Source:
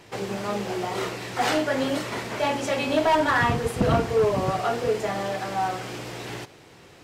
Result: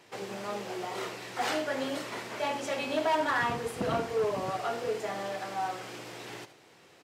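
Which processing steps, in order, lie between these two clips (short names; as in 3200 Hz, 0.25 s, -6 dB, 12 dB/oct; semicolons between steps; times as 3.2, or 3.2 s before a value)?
HPF 290 Hz 6 dB/oct; echo 76 ms -14 dB; gain -6.5 dB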